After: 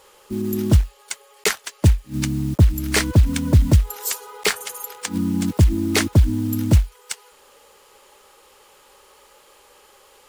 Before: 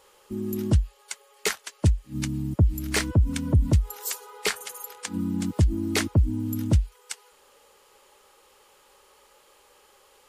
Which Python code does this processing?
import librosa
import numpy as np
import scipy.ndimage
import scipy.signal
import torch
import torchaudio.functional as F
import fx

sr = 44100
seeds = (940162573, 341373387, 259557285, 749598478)

y = fx.block_float(x, sr, bits=5)
y = y * librosa.db_to_amplitude(6.0)